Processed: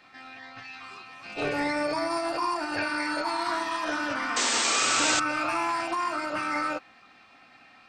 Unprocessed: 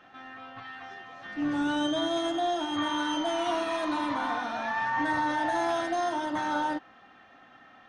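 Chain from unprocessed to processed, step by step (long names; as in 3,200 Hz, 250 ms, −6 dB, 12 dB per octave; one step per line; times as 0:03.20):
formants moved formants +6 semitones
sound drawn into the spectrogram noise, 0:04.36–0:05.20, 220–8,500 Hz −26 dBFS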